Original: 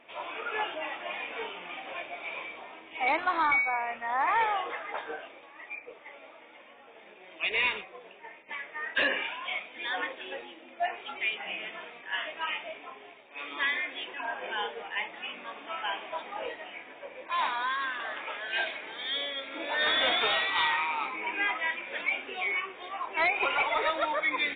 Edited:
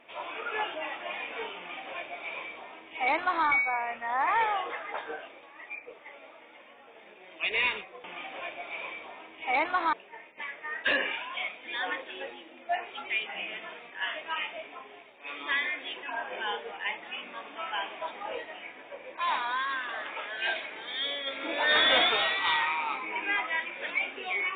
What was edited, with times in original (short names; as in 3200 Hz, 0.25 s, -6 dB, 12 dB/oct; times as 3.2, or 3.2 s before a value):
1.57–3.46 copy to 8.04
19.38–20.21 gain +3.5 dB